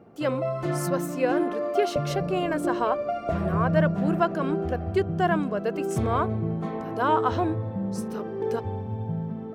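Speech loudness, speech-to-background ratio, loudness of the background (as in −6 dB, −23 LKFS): −28.5 LKFS, 0.5 dB, −29.0 LKFS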